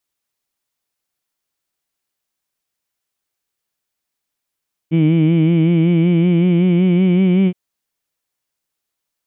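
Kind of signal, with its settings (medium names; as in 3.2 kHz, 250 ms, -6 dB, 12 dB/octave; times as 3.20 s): formant-synthesis vowel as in heed, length 2.62 s, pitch 158 Hz, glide +3 st, vibrato depth 0.75 st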